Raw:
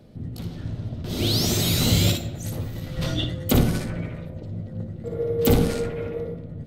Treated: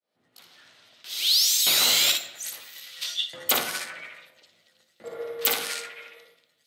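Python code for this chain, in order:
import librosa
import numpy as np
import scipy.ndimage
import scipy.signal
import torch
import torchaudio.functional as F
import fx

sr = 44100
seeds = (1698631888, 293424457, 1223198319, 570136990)

y = fx.fade_in_head(x, sr, length_s=1.33)
y = fx.filter_lfo_highpass(y, sr, shape='saw_up', hz=0.6, low_hz=830.0, high_hz=4300.0, q=0.87)
y = F.gain(torch.from_numpy(y), 5.5).numpy()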